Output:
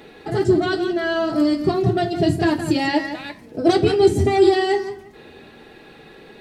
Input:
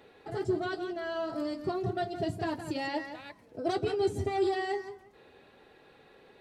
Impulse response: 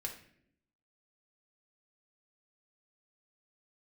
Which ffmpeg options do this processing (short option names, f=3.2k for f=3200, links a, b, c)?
-filter_complex "[0:a]asplit=2[a][b];[b]equalizer=f=250:t=o:w=1:g=9,equalizer=f=500:t=o:w=1:g=-6,equalizer=f=1k:t=o:w=1:g=-10[c];[1:a]atrim=start_sample=2205,atrim=end_sample=3969[d];[c][d]afir=irnorm=-1:irlink=0,volume=3dB[e];[a][e]amix=inputs=2:normalize=0,volume=8.5dB"